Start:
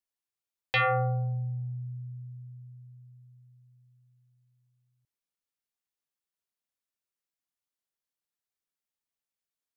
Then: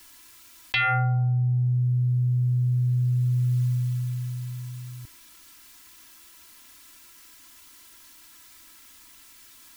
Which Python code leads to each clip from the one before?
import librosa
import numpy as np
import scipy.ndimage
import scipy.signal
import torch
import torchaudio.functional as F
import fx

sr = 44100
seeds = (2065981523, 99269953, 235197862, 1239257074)

y = fx.band_shelf(x, sr, hz=550.0, db=-9.0, octaves=1.2)
y = y + 0.92 * np.pad(y, (int(3.0 * sr / 1000.0), 0))[:len(y)]
y = fx.env_flatten(y, sr, amount_pct=100)
y = y * 10.0 ** (-1.5 / 20.0)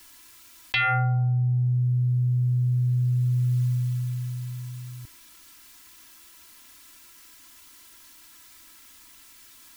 y = x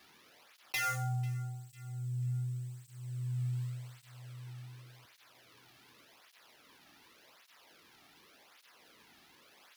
y = fx.sample_hold(x, sr, seeds[0], rate_hz=8100.0, jitter_pct=20)
y = fx.echo_feedback(y, sr, ms=494, feedback_pct=42, wet_db=-21.0)
y = fx.flanger_cancel(y, sr, hz=0.87, depth_ms=2.1)
y = y * 10.0 ** (-8.0 / 20.0)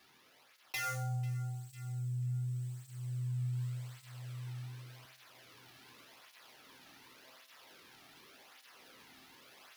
y = fx.comb_fb(x, sr, f0_hz=130.0, decay_s=0.69, harmonics='all', damping=0.0, mix_pct=70)
y = fx.rider(y, sr, range_db=3, speed_s=0.5)
y = y * 10.0 ** (8.5 / 20.0)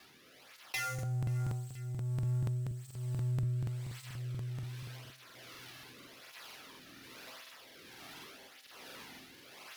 y = fx.law_mismatch(x, sr, coded='mu')
y = fx.rotary(y, sr, hz=1.2)
y = fx.buffer_crackle(y, sr, first_s=0.94, period_s=0.24, block=2048, kind='repeat')
y = y * 10.0 ** (1.5 / 20.0)